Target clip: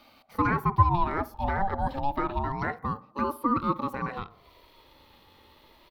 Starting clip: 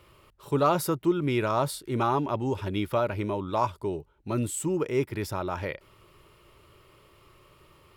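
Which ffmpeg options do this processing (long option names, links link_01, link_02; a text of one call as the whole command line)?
ffmpeg -i in.wav -filter_complex "[0:a]superequalizer=6b=2.51:12b=2.24:14b=0.398:16b=1.58,acrossover=split=1000[link_01][link_02];[link_02]acompressor=threshold=-49dB:ratio=5[link_03];[link_01][link_03]amix=inputs=2:normalize=0,asplit=2[link_04][link_05];[link_05]adelay=76,lowpass=frequency=870:poles=1,volume=-17dB,asplit=2[link_06][link_07];[link_07]adelay=76,lowpass=frequency=870:poles=1,volume=0.53,asplit=2[link_08][link_09];[link_09]adelay=76,lowpass=frequency=870:poles=1,volume=0.53,asplit=2[link_10][link_11];[link_11]adelay=76,lowpass=frequency=870:poles=1,volume=0.53,asplit=2[link_12][link_13];[link_13]adelay=76,lowpass=frequency=870:poles=1,volume=0.53[link_14];[link_04][link_06][link_08][link_10][link_12][link_14]amix=inputs=6:normalize=0,aeval=exprs='0.447*(cos(1*acos(clip(val(0)/0.447,-1,1)))-cos(1*PI/2))+0.0158*(cos(2*acos(clip(val(0)/0.447,-1,1)))-cos(2*PI/2))+0.00355*(cos(5*acos(clip(val(0)/0.447,-1,1)))-cos(5*PI/2))':channel_layout=same,asetrate=59535,aresample=44100,aeval=exprs='val(0)*sin(2*PI*560*n/s+560*0.3/0.28*sin(2*PI*0.28*n/s))':channel_layout=same" out.wav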